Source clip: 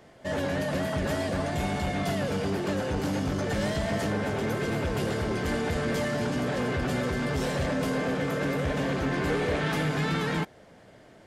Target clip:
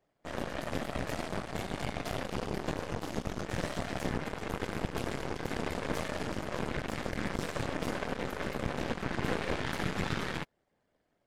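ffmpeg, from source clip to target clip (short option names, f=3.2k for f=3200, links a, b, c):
-af "afftfilt=real='hypot(re,im)*cos(2*PI*random(0))':imag='hypot(re,im)*sin(2*PI*random(1))':win_size=512:overlap=0.75,aeval=exprs='0.1*(cos(1*acos(clip(val(0)/0.1,-1,1)))-cos(1*PI/2))+0.0224*(cos(4*acos(clip(val(0)/0.1,-1,1)))-cos(4*PI/2))+0.0126*(cos(7*acos(clip(val(0)/0.1,-1,1)))-cos(7*PI/2))':c=same"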